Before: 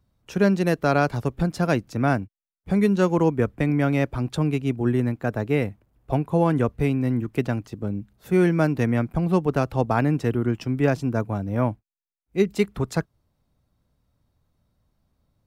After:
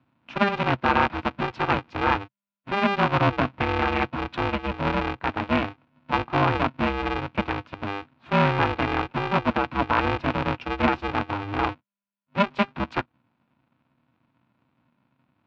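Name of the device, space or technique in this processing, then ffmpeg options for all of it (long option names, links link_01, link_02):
ring modulator pedal into a guitar cabinet: -af "aeval=exprs='val(0)*sgn(sin(2*PI*200*n/s))':channel_layout=same,highpass=83,equalizer=frequency=130:width_type=q:width=4:gain=7,equalizer=frequency=240:width_type=q:width=4:gain=7,equalizer=frequency=410:width_type=q:width=4:gain=-8,equalizer=frequency=960:width_type=q:width=4:gain=8,equalizer=frequency=1400:width_type=q:width=4:gain=6,equalizer=frequency=2500:width_type=q:width=4:gain=7,lowpass=frequency=3800:width=0.5412,lowpass=frequency=3800:width=1.3066,volume=-3dB"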